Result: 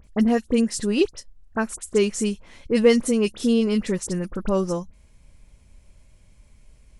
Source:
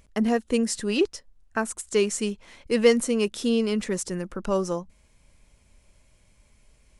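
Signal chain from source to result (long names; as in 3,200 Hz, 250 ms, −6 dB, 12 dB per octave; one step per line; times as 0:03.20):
low-shelf EQ 250 Hz +8 dB
all-pass dispersion highs, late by 43 ms, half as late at 2,600 Hz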